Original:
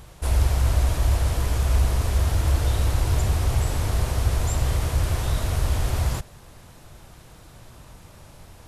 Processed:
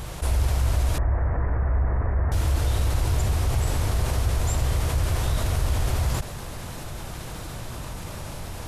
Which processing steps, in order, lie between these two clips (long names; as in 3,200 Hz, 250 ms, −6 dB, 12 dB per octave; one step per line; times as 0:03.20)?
0:00.98–0:02.32: elliptic low-pass filter 1,900 Hz, stop band 50 dB
envelope flattener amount 50%
level −3.5 dB